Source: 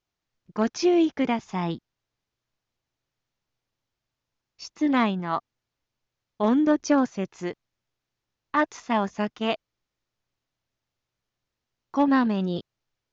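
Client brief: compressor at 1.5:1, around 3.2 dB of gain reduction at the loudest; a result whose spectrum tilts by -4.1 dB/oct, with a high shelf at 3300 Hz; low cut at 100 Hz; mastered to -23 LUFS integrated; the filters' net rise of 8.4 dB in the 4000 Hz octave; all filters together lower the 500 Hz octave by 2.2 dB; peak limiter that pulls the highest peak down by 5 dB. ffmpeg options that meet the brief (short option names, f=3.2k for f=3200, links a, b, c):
-af "highpass=100,equalizer=f=500:t=o:g=-3.5,highshelf=f=3.3k:g=5.5,equalizer=f=4k:t=o:g=7.5,acompressor=threshold=-26dB:ratio=1.5,volume=6dB,alimiter=limit=-10.5dB:level=0:latency=1"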